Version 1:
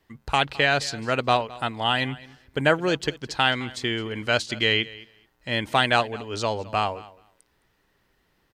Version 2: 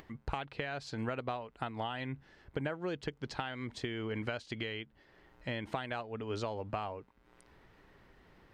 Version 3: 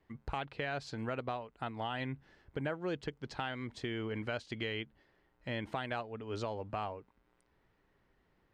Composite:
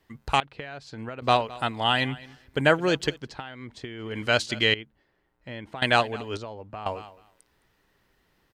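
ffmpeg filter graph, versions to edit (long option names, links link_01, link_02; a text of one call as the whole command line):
ffmpeg -i take0.wav -i take1.wav -i take2.wav -filter_complex "[1:a]asplit=2[link_01][link_02];[2:a]asplit=2[link_03][link_04];[0:a]asplit=5[link_05][link_06][link_07][link_08][link_09];[link_05]atrim=end=0.402[link_10];[link_01]atrim=start=0.398:end=1.222[link_11];[link_06]atrim=start=1.218:end=3.33[link_12];[link_02]atrim=start=3.09:end=4.22[link_13];[link_07]atrim=start=3.98:end=4.742[link_14];[link_03]atrim=start=4.738:end=5.822[link_15];[link_08]atrim=start=5.818:end=6.372[link_16];[link_04]atrim=start=6.368:end=6.862[link_17];[link_09]atrim=start=6.858[link_18];[link_10][link_11]acrossfade=duration=0.004:curve1=hsin:curve2=hsin[link_19];[link_19][link_12]acrossfade=duration=0.004:curve1=hsin:curve2=hsin[link_20];[link_20][link_13]acrossfade=duration=0.24:curve1=tri:curve2=tri[link_21];[link_21][link_14]acrossfade=duration=0.24:curve1=tri:curve2=tri[link_22];[link_22][link_15]acrossfade=duration=0.004:curve1=hsin:curve2=hsin[link_23];[link_23][link_16]acrossfade=duration=0.004:curve1=hsin:curve2=hsin[link_24];[link_24][link_17]acrossfade=duration=0.004:curve1=hsin:curve2=hsin[link_25];[link_25][link_18]acrossfade=duration=0.004:curve1=hsin:curve2=hsin" out.wav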